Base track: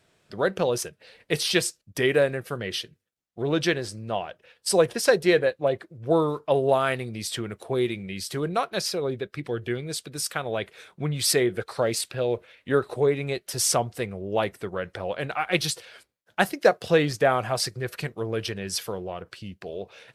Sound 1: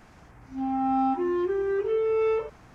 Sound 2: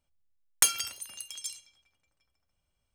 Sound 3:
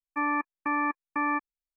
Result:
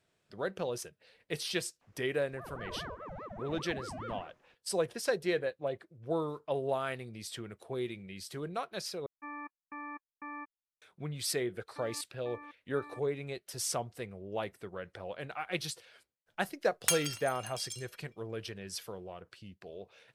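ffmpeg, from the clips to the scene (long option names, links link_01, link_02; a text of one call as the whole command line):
ffmpeg -i bed.wav -i cue0.wav -i cue1.wav -i cue2.wav -filter_complex "[3:a]asplit=2[link_01][link_02];[0:a]volume=-11.5dB[link_03];[1:a]aeval=exprs='val(0)*sin(2*PI*570*n/s+570*0.7/4.9*sin(2*PI*4.9*n/s))':channel_layout=same[link_04];[link_02]alimiter=level_in=5dB:limit=-24dB:level=0:latency=1:release=71,volume=-5dB[link_05];[2:a]equalizer=frequency=2100:width_type=o:width=2.7:gain=5.5[link_06];[link_03]asplit=2[link_07][link_08];[link_07]atrim=end=9.064[link_09];[link_01]atrim=end=1.76,asetpts=PTS-STARTPTS,volume=-16dB[link_10];[link_08]atrim=start=10.816[link_11];[link_04]atrim=end=2.74,asetpts=PTS-STARTPTS,volume=-15.5dB,afade=type=in:duration=0.004:curve=hsin,afade=type=out:start_time=2.736:duration=0.004:curve=hsin,adelay=1810[link_12];[link_05]atrim=end=1.76,asetpts=PTS-STARTPTS,volume=-14.5dB,afade=type=in:duration=0.004:curve=hsin,afade=type=out:start_time=1.756:duration=0.004:curve=hsin,adelay=11600[link_13];[link_06]atrim=end=2.94,asetpts=PTS-STARTPTS,volume=-8dB,afade=type=in:duration=0.004:curve=hsin,afade=type=out:start_time=2.936:duration=0.004:curve=hsin,adelay=16260[link_14];[link_09][link_10]acrossfade=duration=0.004:curve1=hsin:curve2=hsin[link_15];[link_15][link_11]acrossfade=duration=0.004:curve1=hsin:curve2=hsin[link_16];[link_16][link_12][link_13][link_14]amix=inputs=4:normalize=0" out.wav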